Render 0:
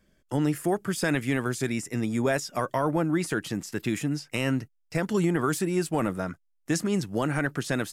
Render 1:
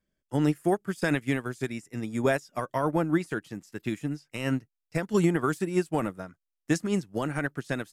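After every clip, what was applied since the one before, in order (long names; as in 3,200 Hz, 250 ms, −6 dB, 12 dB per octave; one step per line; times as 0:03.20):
expander for the loud parts 2.5 to 1, over −34 dBFS
level +3 dB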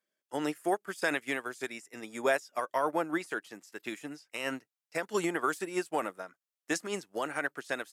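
high-pass filter 490 Hz 12 dB per octave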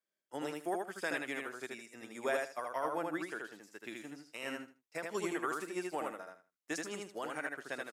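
repeating echo 78 ms, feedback 21%, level −3 dB
level −7.5 dB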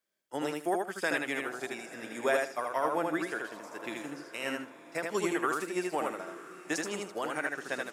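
feedback delay with all-pass diffusion 933 ms, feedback 42%, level −15.5 dB
level +6 dB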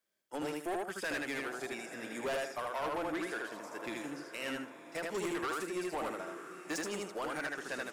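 soft clipping −32 dBFS, distortion −8 dB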